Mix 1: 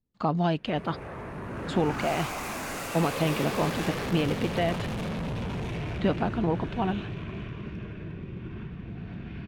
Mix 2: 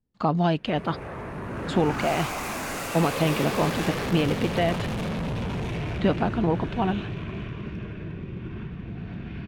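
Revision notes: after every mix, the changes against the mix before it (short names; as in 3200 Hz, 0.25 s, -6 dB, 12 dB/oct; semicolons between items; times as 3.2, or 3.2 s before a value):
speech +3.0 dB; background +3.0 dB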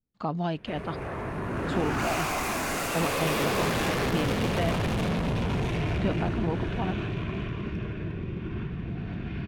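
speech -7.0 dB; reverb: on, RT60 0.95 s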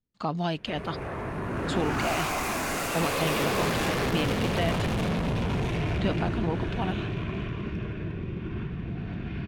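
speech: add high shelf 2700 Hz +11 dB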